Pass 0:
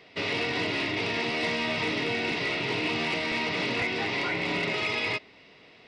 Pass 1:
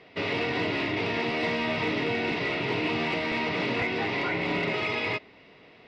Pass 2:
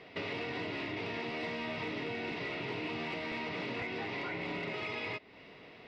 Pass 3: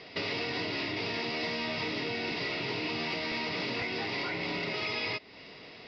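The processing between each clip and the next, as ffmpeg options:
-af "aemphasis=mode=reproduction:type=75kf,volume=1.33"
-af "acompressor=threshold=0.0112:ratio=3"
-af "lowpass=f=5000:t=q:w=5.3,volume=1.41"

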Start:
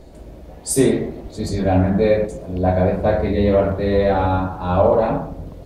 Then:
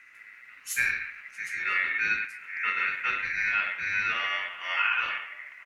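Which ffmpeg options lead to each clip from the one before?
-filter_complex "[0:a]aeval=exprs='val(0)*sin(2*PI*2000*n/s)':c=same,asplit=2[s0][s1];[s1]adelay=991.3,volume=0.141,highshelf=f=4000:g=-22.3[s2];[s0][s2]amix=inputs=2:normalize=0,volume=0.355"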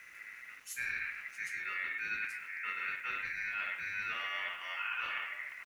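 -af "areverse,acompressor=threshold=0.0178:ratio=6,areverse,aeval=exprs='val(0)*gte(abs(val(0)),0.00119)':c=same"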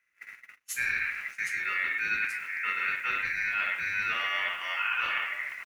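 -af "agate=range=0.0316:threshold=0.00447:ratio=16:detection=peak,volume=2.51"

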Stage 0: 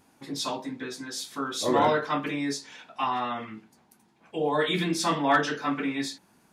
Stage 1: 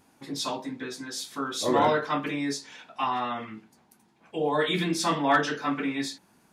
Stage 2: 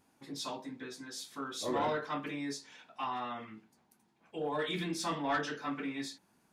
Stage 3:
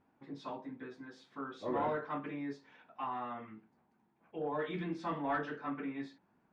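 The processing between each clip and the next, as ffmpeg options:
-af anull
-af "asoftclip=type=tanh:threshold=0.168,volume=0.376"
-af "lowpass=1800,volume=0.841"

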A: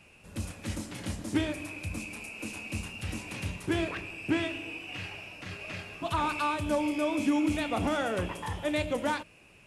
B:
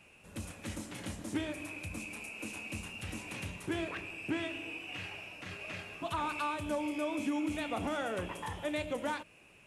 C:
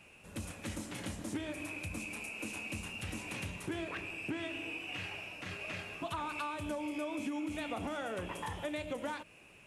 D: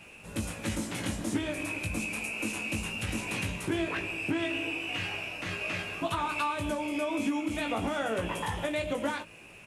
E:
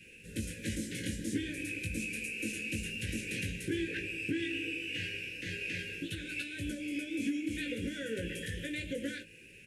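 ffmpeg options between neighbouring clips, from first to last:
-af "equalizer=f=4800:t=o:w=0.45:g=-4,acompressor=threshold=0.02:ratio=1.5,lowshelf=f=160:g=-5.5,volume=0.794"
-af "acompressor=threshold=0.0141:ratio=4,volume=1.19"
-filter_complex "[0:a]asplit=2[s0][s1];[s1]adelay=18,volume=0.562[s2];[s0][s2]amix=inputs=2:normalize=0,volume=2.11"
-af "asuperstop=centerf=910:order=20:qfactor=0.92,volume=0.668"

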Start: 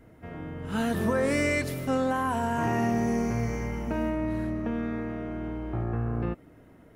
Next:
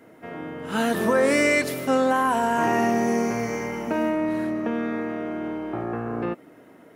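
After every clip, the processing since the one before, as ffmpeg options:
-af "highpass=260,volume=2.24"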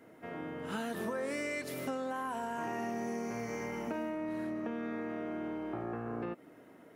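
-af "acompressor=threshold=0.0398:ratio=5,volume=0.473"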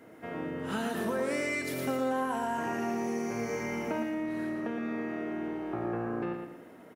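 -af "aecho=1:1:115|230|345|460:0.501|0.18|0.065|0.0234,volume=1.58"

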